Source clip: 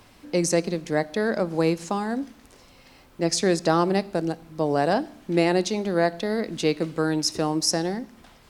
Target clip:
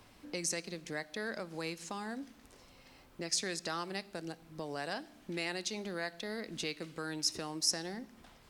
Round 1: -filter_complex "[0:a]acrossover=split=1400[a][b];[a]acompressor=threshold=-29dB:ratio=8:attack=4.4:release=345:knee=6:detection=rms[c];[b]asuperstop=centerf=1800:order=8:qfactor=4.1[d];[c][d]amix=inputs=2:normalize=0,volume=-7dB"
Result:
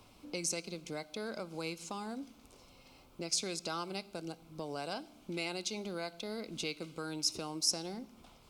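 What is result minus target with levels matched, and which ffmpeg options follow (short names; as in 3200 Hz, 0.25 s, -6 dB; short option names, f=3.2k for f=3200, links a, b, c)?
2000 Hz band -4.0 dB
-filter_complex "[0:a]acrossover=split=1400[a][b];[a]acompressor=threshold=-29dB:ratio=8:attack=4.4:release=345:knee=6:detection=rms[c];[c][b]amix=inputs=2:normalize=0,volume=-7dB"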